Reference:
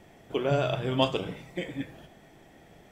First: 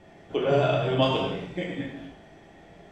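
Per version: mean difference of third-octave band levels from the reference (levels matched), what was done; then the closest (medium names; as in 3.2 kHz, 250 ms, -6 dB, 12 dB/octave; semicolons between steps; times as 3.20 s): 3.5 dB: distance through air 76 m; gated-style reverb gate 320 ms falling, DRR -2 dB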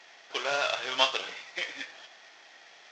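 11.5 dB: CVSD coder 32 kbps; high-pass 1.2 kHz 12 dB/octave; trim +8 dB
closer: first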